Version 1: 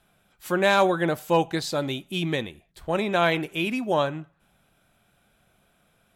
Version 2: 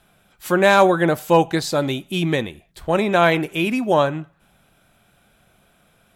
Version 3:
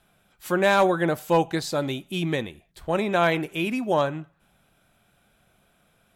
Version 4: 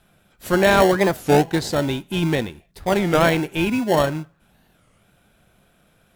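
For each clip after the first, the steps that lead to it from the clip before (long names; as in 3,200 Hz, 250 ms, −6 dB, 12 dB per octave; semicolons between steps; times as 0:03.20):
dynamic equaliser 3,400 Hz, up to −4 dB, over −37 dBFS, Q 1.3; level +6.5 dB
hard clipping −5.5 dBFS, distortion −29 dB; level −5.5 dB
in parallel at −6 dB: decimation without filtering 36×; on the sum: wow of a warped record 33 1/3 rpm, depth 250 cents; level +3 dB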